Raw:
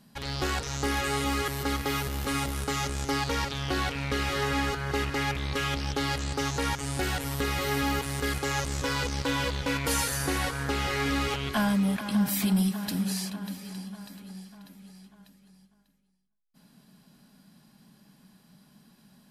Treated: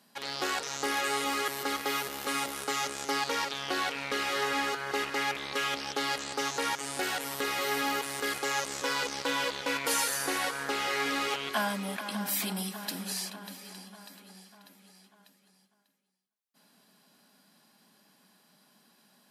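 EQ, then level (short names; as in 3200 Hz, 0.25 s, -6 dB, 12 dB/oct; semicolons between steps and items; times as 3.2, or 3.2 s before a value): HPF 390 Hz 12 dB/oct; 0.0 dB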